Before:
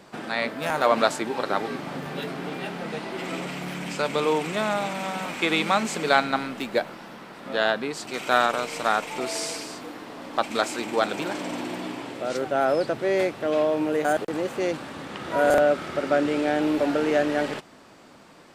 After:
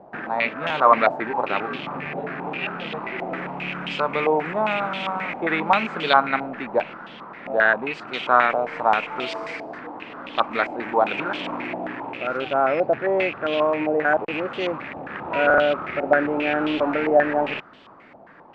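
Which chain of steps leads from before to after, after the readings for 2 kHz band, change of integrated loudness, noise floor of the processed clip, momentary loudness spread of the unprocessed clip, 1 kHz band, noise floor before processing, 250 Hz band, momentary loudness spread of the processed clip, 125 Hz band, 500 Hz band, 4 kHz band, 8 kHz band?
+5.0 dB, +2.5 dB, -47 dBFS, 11 LU, +5.0 dB, -50 dBFS, -0.5 dB, 12 LU, -0.5 dB, +1.5 dB, -1.0 dB, under -20 dB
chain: rattle on loud lows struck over -41 dBFS, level -28 dBFS; step-sequenced low-pass 7.5 Hz 740–3200 Hz; trim -1 dB

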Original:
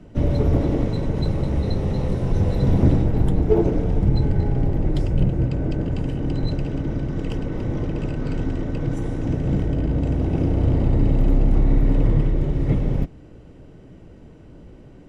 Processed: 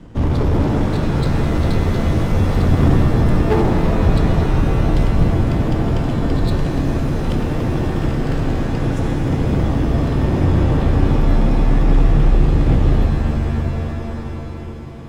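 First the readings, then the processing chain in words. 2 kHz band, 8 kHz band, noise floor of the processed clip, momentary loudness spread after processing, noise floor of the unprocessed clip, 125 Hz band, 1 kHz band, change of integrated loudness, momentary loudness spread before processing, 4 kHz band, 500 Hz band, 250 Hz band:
+11.5 dB, no reading, -28 dBFS, 5 LU, -45 dBFS, +4.5 dB, +11.0 dB, +4.5 dB, 7 LU, +9.0 dB, +4.5 dB, +5.0 dB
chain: comb filter that takes the minimum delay 0.59 ms; in parallel at -6 dB: wavefolder -20 dBFS; on the sum: de-hum 65.93 Hz, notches 34; pitch-shifted reverb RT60 3.6 s, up +7 st, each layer -2 dB, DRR 5 dB; trim +2 dB

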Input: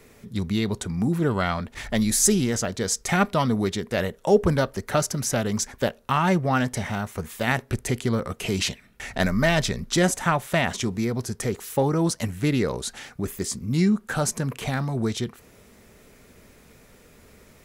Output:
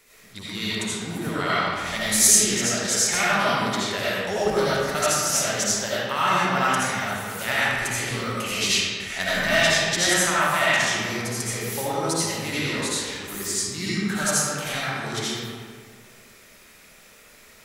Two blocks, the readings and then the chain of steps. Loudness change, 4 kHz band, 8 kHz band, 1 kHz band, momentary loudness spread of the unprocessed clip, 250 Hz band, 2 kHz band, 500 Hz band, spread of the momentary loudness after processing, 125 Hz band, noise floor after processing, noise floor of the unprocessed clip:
+2.5 dB, +7.5 dB, +6.5 dB, +3.0 dB, 9 LU, -5.5 dB, +6.5 dB, -1.0 dB, 9 LU, -7.0 dB, -51 dBFS, -54 dBFS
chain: tilt shelf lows -8.5 dB, about 840 Hz; algorithmic reverb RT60 1.9 s, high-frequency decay 0.6×, pre-delay 40 ms, DRR -9.5 dB; trim -8.5 dB

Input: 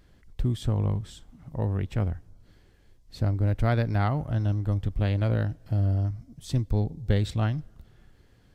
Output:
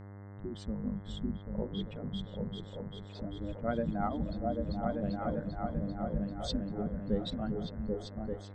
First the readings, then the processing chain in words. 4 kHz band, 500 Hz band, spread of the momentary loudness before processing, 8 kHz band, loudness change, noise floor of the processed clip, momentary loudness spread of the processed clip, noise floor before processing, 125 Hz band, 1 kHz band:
-1.0 dB, -2.5 dB, 7 LU, no reading, -9.0 dB, -47 dBFS, 8 LU, -59 dBFS, -14.5 dB, -3.0 dB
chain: spectral contrast enhancement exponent 2; on a send: delay with an opening low-pass 393 ms, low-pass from 200 Hz, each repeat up 2 oct, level 0 dB; on the sum: spectral noise reduction 17 dB; peaking EQ 62 Hz +14 dB 0.91 oct; in parallel at +1.5 dB: peak limiter -14 dBFS, peak gain reduction 10 dB; on the sum: spectral gate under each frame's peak -20 dB weak; distance through air 94 m; mains buzz 100 Hz, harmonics 21, -49 dBFS -7 dB/octave; trim +1.5 dB

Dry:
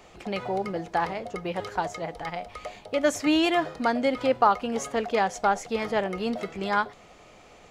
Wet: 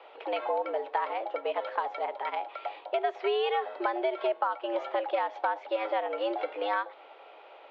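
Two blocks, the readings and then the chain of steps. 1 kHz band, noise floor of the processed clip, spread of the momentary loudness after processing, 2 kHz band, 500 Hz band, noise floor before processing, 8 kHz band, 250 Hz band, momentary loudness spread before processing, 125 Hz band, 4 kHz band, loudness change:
-3.5 dB, -52 dBFS, 8 LU, -6.0 dB, -2.5 dB, -52 dBFS, under -35 dB, -14.0 dB, 12 LU, under -35 dB, -6.5 dB, -4.5 dB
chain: mistuned SSB +110 Hz 290–3400 Hz; peaking EQ 2.1 kHz -5 dB 1.9 oct; compression 6:1, threshold -29 dBFS, peak gain reduction 12 dB; trim +3.5 dB

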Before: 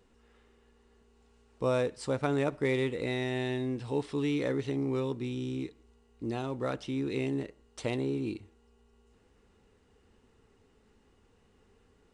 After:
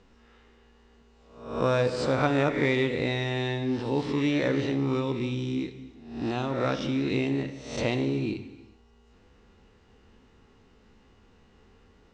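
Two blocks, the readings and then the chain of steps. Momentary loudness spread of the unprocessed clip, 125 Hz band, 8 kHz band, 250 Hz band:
8 LU, +5.5 dB, +3.5 dB, +5.0 dB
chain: reverse spectral sustain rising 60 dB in 0.65 s; low-pass 6.3 kHz 24 dB/octave; peaking EQ 440 Hz -4 dB 0.54 oct; gated-style reverb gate 440 ms falling, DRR 9.5 dB; trim +5 dB

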